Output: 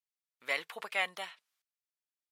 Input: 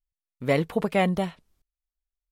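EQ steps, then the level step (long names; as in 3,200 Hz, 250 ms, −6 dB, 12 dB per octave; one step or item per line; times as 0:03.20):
high-pass filter 1,500 Hz 12 dB per octave
high-shelf EQ 5,700 Hz −5.5 dB
0.0 dB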